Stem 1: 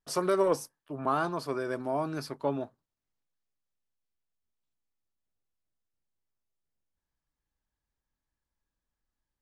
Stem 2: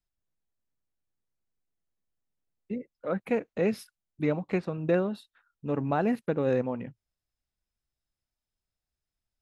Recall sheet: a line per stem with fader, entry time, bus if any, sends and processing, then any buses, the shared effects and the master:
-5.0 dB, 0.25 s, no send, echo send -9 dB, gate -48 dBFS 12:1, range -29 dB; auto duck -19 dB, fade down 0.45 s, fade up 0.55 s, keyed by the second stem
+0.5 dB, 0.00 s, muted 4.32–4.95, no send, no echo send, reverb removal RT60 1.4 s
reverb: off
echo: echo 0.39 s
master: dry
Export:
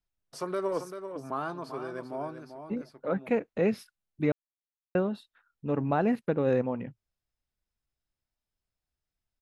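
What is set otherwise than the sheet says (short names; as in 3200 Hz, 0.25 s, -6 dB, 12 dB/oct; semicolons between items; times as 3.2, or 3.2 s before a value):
stem 2: missing reverb removal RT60 1.4 s; master: extra high shelf 5200 Hz -6.5 dB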